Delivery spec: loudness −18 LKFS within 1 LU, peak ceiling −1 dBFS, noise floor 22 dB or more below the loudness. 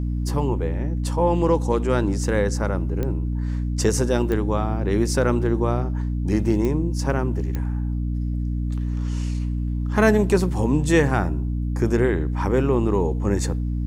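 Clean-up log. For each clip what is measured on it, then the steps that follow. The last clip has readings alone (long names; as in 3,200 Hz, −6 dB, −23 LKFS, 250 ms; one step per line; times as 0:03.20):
number of clicks 4; mains hum 60 Hz; hum harmonics up to 300 Hz; level of the hum −22 dBFS; integrated loudness −22.5 LKFS; sample peak −4.0 dBFS; target loudness −18.0 LKFS
→ click removal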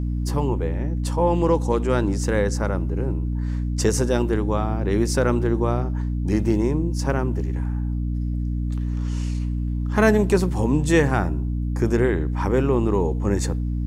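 number of clicks 0; mains hum 60 Hz; hum harmonics up to 300 Hz; level of the hum −22 dBFS
→ mains-hum notches 60/120/180/240/300 Hz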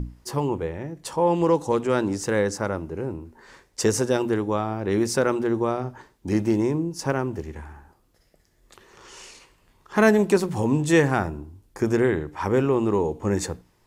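mains hum none found; integrated loudness −24.0 LKFS; sample peak −5.5 dBFS; target loudness −18.0 LKFS
→ level +6 dB
brickwall limiter −1 dBFS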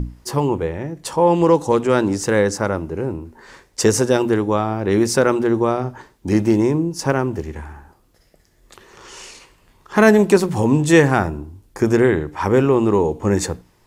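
integrated loudness −18.0 LKFS; sample peak −1.0 dBFS; background noise floor −57 dBFS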